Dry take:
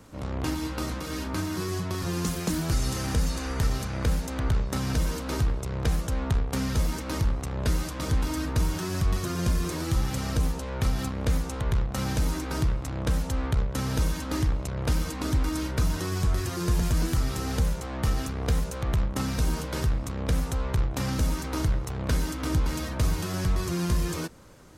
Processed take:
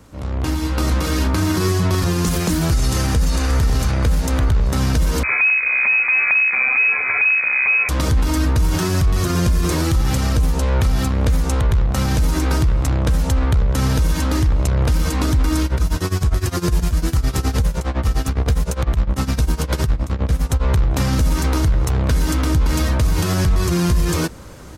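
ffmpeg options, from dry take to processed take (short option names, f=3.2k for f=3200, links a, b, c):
-filter_complex "[0:a]asplit=2[a][b];[b]afade=t=in:st=2.86:d=0.01,afade=t=out:st=3.33:d=0.01,aecho=0:1:580|1160|1740|2320:0.316228|0.126491|0.0505964|0.0202386[c];[a][c]amix=inputs=2:normalize=0,asettb=1/sr,asplit=3[d][e][f];[d]atrim=end=5.234[g];[e]atrim=start=5.23:end=7.89,asetpts=PTS-STARTPTS,afade=t=in:d=0.004:c=qsin,afade=t=out:st=2.656:d=0.004:c=qsin,lowpass=f=2.2k:t=q:w=0.5098,lowpass=f=2.2k:t=q:w=0.6013,lowpass=f=2.2k:t=q:w=0.9,lowpass=f=2.2k:t=q:w=2.563,afreqshift=-2600[h];[f]atrim=start=7.886[i];[g][h]acrossfade=d=0.004:c1=hsin:c2=qsin[j];[j][i]acrossfade=d=0.004:c1=qsin:c2=hsin,asettb=1/sr,asplit=3[k][l][m];[k]atrim=end=15.644[n];[l]atrim=start=15.64:end=20.66,asetpts=PTS-STARTPTS,afade=t=in:d=0.004:c=qsin,afade=t=out:st=5.016:d=0.004:c=qsin,tremolo=f=9.8:d=0.89[o];[m]atrim=start=20.656[p];[n][o]acrossfade=d=0.004:c1=hsin:c2=qsin[q];[q][p]acrossfade=d=0.004:c1=qsin:c2=hsin,equalizer=f=66:w=1.6:g=7,dynaudnorm=f=130:g=13:m=11.5dB,alimiter=level_in=12dB:limit=-1dB:release=50:level=0:latency=1,volume=-8.5dB"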